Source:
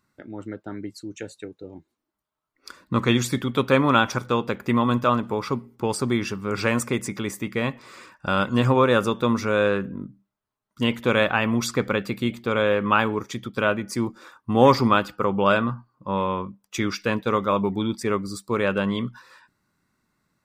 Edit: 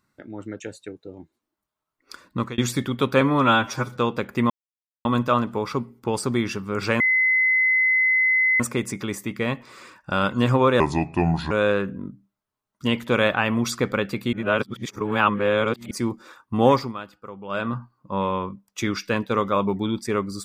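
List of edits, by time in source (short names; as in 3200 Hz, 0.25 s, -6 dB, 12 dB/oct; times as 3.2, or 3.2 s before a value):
0.6–1.16 cut
2.78–3.14 fade out equal-power
3.77–4.27 stretch 1.5×
4.81 insert silence 0.55 s
6.76 add tone 2040 Hz -16 dBFS 1.60 s
8.96–9.47 speed 72%
12.29–13.87 reverse
14.59–15.74 dip -15.5 dB, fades 0.30 s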